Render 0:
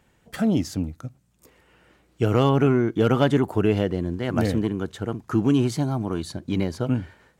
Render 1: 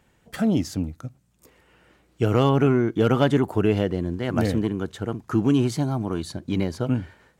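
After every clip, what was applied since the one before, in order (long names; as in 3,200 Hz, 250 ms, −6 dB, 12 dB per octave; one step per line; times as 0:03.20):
no processing that can be heard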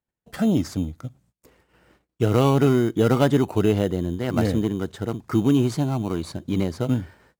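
in parallel at −7.5 dB: decimation without filtering 13×
on the sum: noise gate −55 dBFS, range −29 dB
level −2 dB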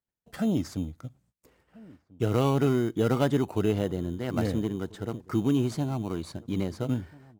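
slap from a distant wall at 230 metres, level −23 dB
level −6 dB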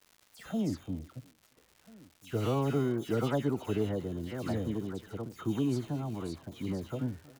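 all-pass dispersion lows, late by 125 ms, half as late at 2,300 Hz
surface crackle 250 per second −41 dBFS
far-end echo of a speakerphone 350 ms, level −20 dB
level −5.5 dB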